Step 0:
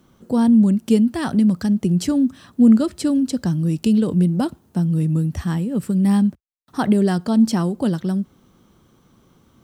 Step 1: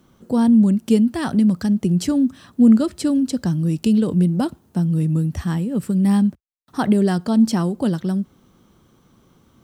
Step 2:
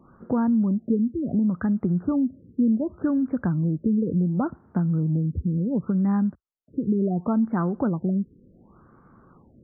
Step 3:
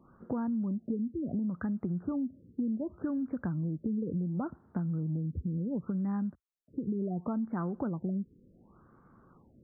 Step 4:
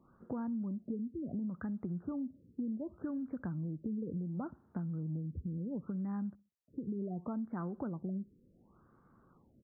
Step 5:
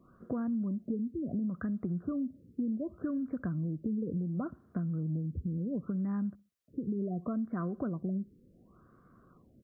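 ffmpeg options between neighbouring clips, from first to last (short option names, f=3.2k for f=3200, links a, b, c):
-af anull
-af "highshelf=f=1.9k:t=q:w=3:g=-10.5,acompressor=threshold=-23dB:ratio=3,afftfilt=real='re*lt(b*sr/1024,510*pow(2500/510,0.5+0.5*sin(2*PI*0.69*pts/sr)))':imag='im*lt(b*sr/1024,510*pow(2500/510,0.5+0.5*sin(2*PI*0.69*pts/sr)))':win_size=1024:overlap=0.75,volume=1dB"
-af "acompressor=threshold=-24dB:ratio=3,volume=-6.5dB"
-filter_complex "[0:a]asplit=2[a][b];[b]adelay=64,lowpass=f=830:p=1,volume=-22.5dB,asplit=2[c][d];[d]adelay=64,lowpass=f=830:p=1,volume=0.39,asplit=2[e][f];[f]adelay=64,lowpass=f=830:p=1,volume=0.39[g];[a][c][e][g]amix=inputs=4:normalize=0,volume=-5.5dB"
-af "asuperstop=centerf=870:order=4:qfactor=4.3,volume=4.5dB"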